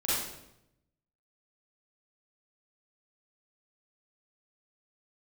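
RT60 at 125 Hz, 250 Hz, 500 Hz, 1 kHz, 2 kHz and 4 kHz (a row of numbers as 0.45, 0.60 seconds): 1.2, 1.0, 0.90, 0.80, 0.70, 0.65 seconds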